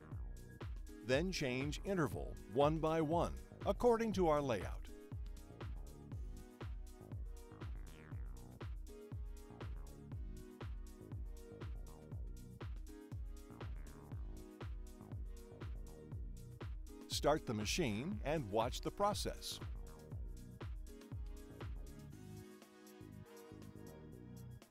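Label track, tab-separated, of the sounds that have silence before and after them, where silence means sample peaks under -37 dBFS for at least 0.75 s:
1.090000	4.730000	sound
17.120000	19.560000	sound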